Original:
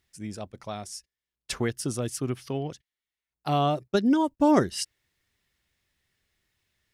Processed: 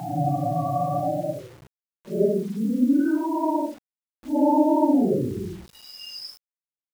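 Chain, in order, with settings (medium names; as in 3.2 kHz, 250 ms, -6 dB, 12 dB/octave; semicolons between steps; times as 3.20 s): loudest bins only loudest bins 8; Paulstretch 4.6×, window 0.05 s, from 3.47 s; bit crusher 8-bit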